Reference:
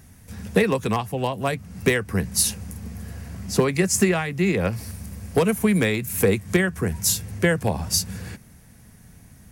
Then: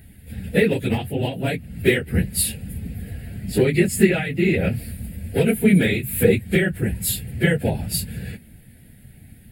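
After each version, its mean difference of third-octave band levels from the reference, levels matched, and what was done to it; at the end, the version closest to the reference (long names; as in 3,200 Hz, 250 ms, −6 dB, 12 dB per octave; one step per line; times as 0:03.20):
4.5 dB: random phases in long frames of 50 ms
phaser with its sweep stopped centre 2,600 Hz, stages 4
level +3.5 dB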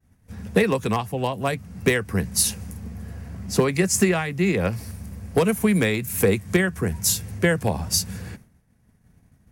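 2.0 dB: downward expander −40 dBFS
one half of a high-frequency compander decoder only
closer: second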